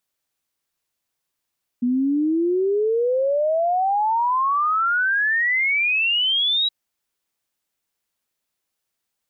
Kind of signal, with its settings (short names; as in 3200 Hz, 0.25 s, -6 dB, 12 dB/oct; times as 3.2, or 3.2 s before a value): log sweep 240 Hz -> 3900 Hz 4.87 s -17 dBFS